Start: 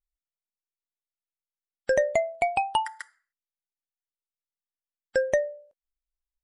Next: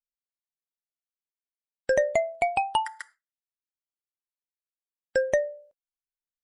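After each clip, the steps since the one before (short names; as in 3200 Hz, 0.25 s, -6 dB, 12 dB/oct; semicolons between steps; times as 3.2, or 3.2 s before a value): gate with hold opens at -44 dBFS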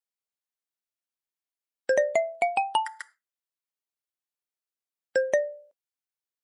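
HPF 240 Hz 12 dB/oct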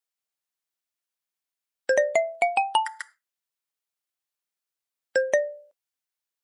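low shelf 480 Hz -6.5 dB; gain +4 dB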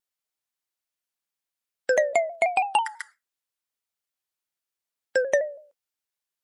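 shaped vibrato saw down 6.1 Hz, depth 100 cents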